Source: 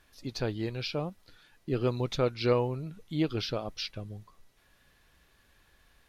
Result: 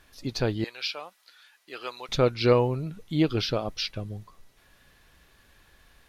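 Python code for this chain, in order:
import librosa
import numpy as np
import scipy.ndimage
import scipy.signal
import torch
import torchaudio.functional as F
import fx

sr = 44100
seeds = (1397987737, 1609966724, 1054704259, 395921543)

y = fx.highpass(x, sr, hz=1100.0, slope=12, at=(0.64, 2.09))
y = F.gain(torch.from_numpy(y), 5.5).numpy()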